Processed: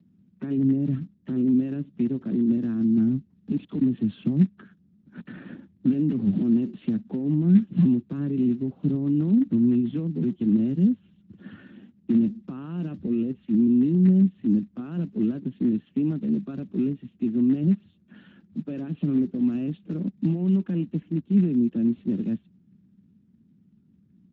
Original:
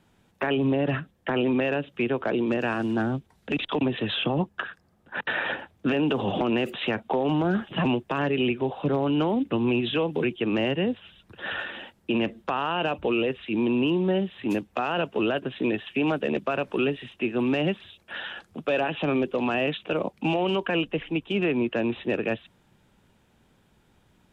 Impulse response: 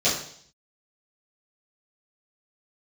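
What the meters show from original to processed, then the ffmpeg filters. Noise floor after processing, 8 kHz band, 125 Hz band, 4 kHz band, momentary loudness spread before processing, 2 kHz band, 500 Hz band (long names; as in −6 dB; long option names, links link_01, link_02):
−61 dBFS, can't be measured, +6.0 dB, below −20 dB, 8 LU, below −20 dB, −10.0 dB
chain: -af "firequalizer=gain_entry='entry(130,0);entry(190,11);entry(470,-17);entry(830,-26);entry(1300,-18);entry(1900,-22)':delay=0.05:min_phase=1" -ar 16000 -c:a libspeex -b:a 13k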